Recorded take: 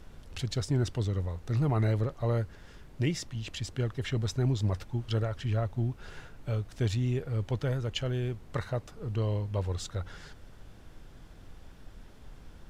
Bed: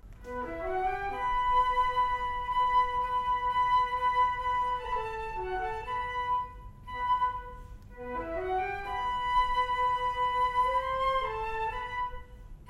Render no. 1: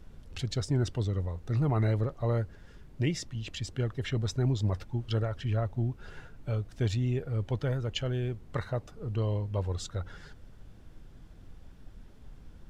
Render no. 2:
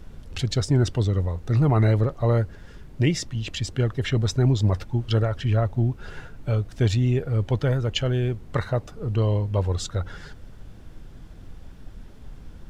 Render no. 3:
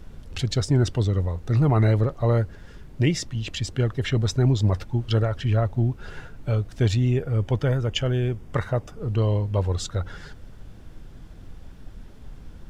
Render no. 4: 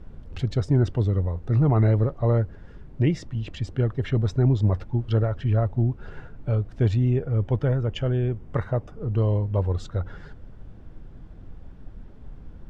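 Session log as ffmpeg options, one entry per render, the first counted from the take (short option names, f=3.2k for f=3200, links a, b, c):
-af "afftdn=nr=6:nf=-51"
-af "volume=8dB"
-filter_complex "[0:a]asettb=1/sr,asplit=3[a][b][c];[a]atrim=end=7.094[d];[b]atrim=start=7.09:end=9,asetpts=PTS-STARTPTS,afade=t=in:d=0.004:c=qsin,afade=t=out:st=1.906:d=0.004:c=qsin,bandreject=f=4.1k:w=6.3[e];[c]atrim=start=8.996[f];[d][e]acrossfade=d=0.004:c1=hsin:c2=qsin[g];[g][f]acrossfade=d=0.004:c1=qsin:c2=hsin"
-af "lowpass=f=1.1k:p=1"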